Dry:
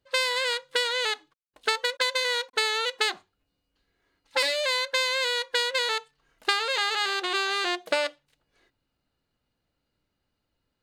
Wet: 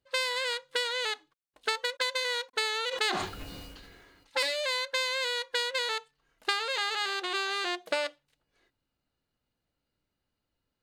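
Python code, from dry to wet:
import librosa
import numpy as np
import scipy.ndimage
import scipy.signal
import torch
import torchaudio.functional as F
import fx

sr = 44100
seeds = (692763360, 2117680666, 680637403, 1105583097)

y = fx.sustainer(x, sr, db_per_s=30.0, at=(2.9, 4.42), fade=0.02)
y = y * 10.0 ** (-4.5 / 20.0)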